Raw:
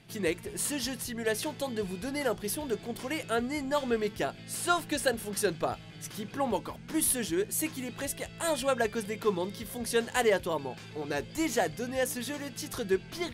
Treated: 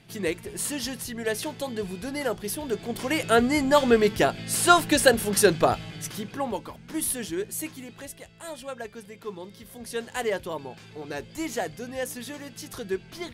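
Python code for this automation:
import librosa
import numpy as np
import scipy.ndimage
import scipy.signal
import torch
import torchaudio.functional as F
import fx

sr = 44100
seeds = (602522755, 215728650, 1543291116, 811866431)

y = fx.gain(x, sr, db=fx.line((2.58, 2.0), (3.35, 10.0), (5.82, 10.0), (6.52, -0.5), (7.48, -0.5), (8.39, -8.5), (9.22, -8.5), (10.38, -1.5)))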